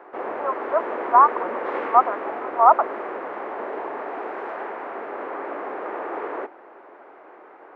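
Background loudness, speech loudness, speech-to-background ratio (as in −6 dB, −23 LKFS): −30.5 LKFS, −19.5 LKFS, 11.0 dB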